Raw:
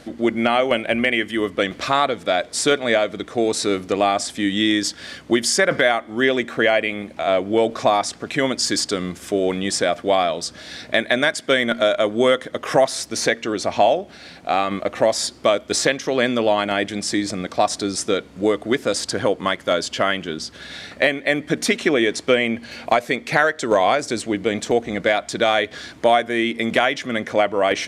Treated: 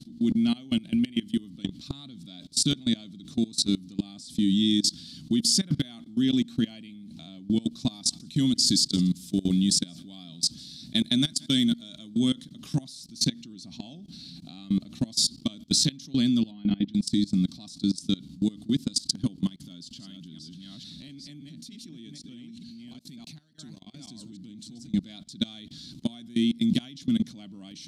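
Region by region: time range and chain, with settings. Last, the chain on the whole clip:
7.62–12.2 high shelf 5000 Hz +5.5 dB + echo 0.165 s -22 dB
16.51–16.94 air absorption 300 m + comb 4 ms, depth 57%
19.49–24.94 reverse delay 0.449 s, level -4.5 dB + compressor 10:1, threshold -30 dBFS
whole clip: EQ curve 100 Hz 0 dB, 150 Hz +11 dB, 270 Hz +5 dB, 470 Hz -27 dB, 770 Hz -21 dB, 1200 Hz -22 dB, 1900 Hz -23 dB, 4100 Hz +6 dB, 6600 Hz -1 dB, 12000 Hz +1 dB; level quantiser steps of 22 dB

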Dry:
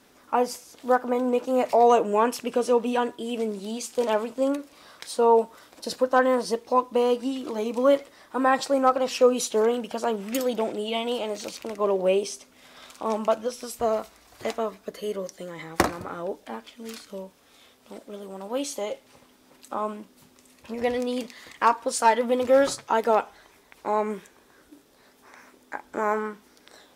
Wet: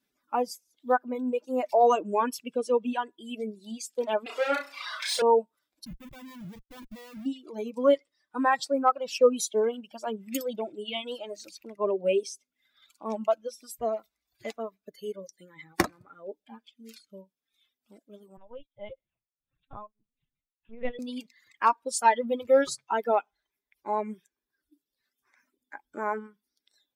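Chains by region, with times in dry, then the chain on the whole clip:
4.26–5.22 overdrive pedal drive 30 dB, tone 2000 Hz, clips at -12.5 dBFS + HPF 530 Hz + flutter echo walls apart 5.6 m, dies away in 0.69 s
5.85–7.26 band-pass 180 Hz, Q 1.7 + Schmitt trigger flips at -50 dBFS
7.92–8.44 LPF 9900 Hz + high shelf 5500 Hz +3 dB
18.37–20.99 LPC vocoder at 8 kHz pitch kept + beating tremolo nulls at 1.6 Hz
whole clip: per-bin expansion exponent 1.5; reverb removal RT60 1.5 s; bell 79 Hz -7 dB 0.66 oct

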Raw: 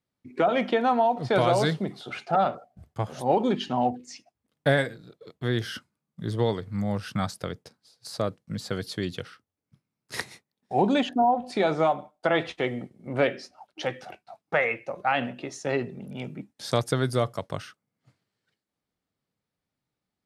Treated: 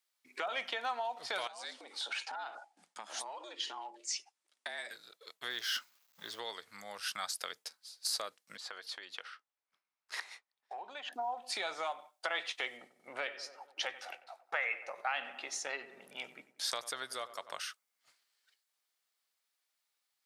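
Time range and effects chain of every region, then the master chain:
1.47–4.91 frequency shift +100 Hz + compressor 8:1, threshold -36 dBFS + steep low-pass 10000 Hz
5.5–6.39 G.711 law mismatch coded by mu + bell 9400 Hz -13 dB 0.41 oct
8.57–11.13 compressor 12:1, threshold -32 dBFS + band-pass 880 Hz, Q 0.63
12.77–17.6 high shelf 3500 Hz -6.5 dB + darkening echo 93 ms, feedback 58%, low-pass 1900 Hz, level -15.5 dB
whole clip: high shelf 2800 Hz +9.5 dB; compressor 3:1, threshold -31 dBFS; HPF 960 Hz 12 dB/oct

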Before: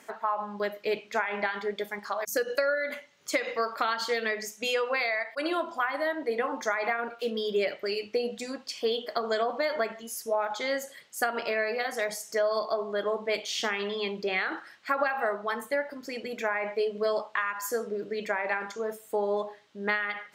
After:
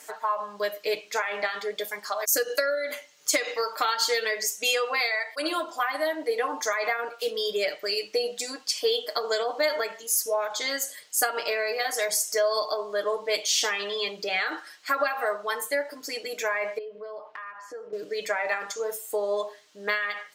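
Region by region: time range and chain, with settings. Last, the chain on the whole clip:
16.78–17.93 LPF 1800 Hz + compressor 3:1, threshold -41 dBFS
whole clip: tone controls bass -12 dB, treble +12 dB; comb 6.6 ms, depth 67%

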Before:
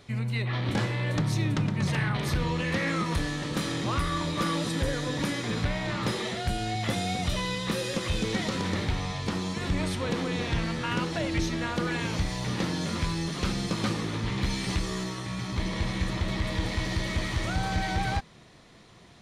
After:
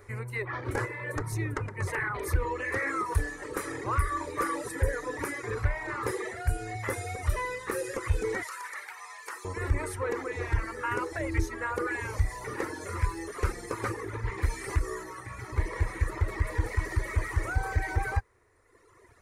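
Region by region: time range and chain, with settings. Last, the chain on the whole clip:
8.43–9.45 HPF 1100 Hz + high shelf 11000 Hz +8 dB
whole clip: EQ curve 100 Hz 0 dB, 170 Hz -26 dB, 420 Hz +3 dB, 680 Hz -9 dB, 960 Hz -1 dB, 2000 Hz -1 dB, 3300 Hz -22 dB, 10000 Hz +1 dB; reverb removal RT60 1.6 s; gain +4 dB

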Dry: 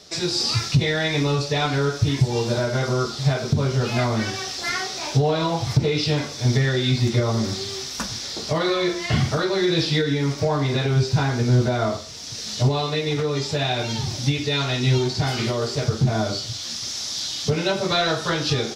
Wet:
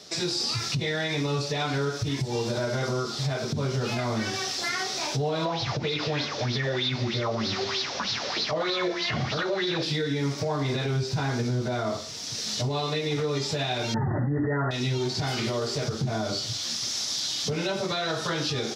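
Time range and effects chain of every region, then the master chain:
5.45–9.83 CVSD 32 kbps + LFO bell 3.2 Hz 510–4300 Hz +14 dB
13.94–14.71 brick-wall FIR low-pass 2000 Hz + fast leveller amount 100%
whole clip: HPF 110 Hz 12 dB/oct; compressor 3:1, threshold -24 dBFS; limiter -19 dBFS

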